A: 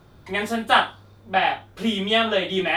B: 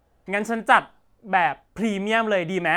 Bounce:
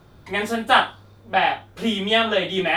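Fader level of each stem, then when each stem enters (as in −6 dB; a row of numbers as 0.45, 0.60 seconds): +1.0, −10.0 decibels; 0.00, 0.00 seconds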